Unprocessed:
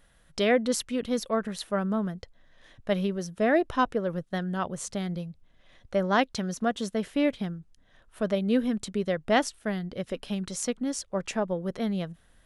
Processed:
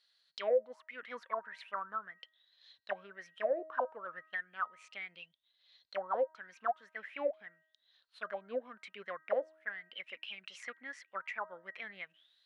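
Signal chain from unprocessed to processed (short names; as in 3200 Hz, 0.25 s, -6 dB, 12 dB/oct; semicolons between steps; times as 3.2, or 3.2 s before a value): low shelf 260 Hz -9 dB; auto-wah 520–4400 Hz, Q 15, down, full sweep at -21.5 dBFS; de-hum 316 Hz, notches 6; compressor 2:1, threshold -58 dBFS, peak gain reduction 17.5 dB; high shelf 3700 Hz -10 dB; gain +17.5 dB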